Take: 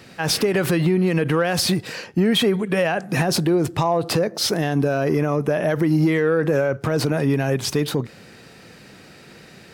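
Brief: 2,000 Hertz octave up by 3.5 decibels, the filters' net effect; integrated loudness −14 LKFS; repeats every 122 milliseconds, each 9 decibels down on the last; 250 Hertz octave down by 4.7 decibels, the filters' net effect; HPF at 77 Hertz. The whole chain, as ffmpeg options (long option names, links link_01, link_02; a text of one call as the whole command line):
ffmpeg -i in.wav -af "highpass=77,equalizer=frequency=250:width_type=o:gain=-7.5,equalizer=frequency=2000:width_type=o:gain=4.5,aecho=1:1:122|244|366|488:0.355|0.124|0.0435|0.0152,volume=7dB" out.wav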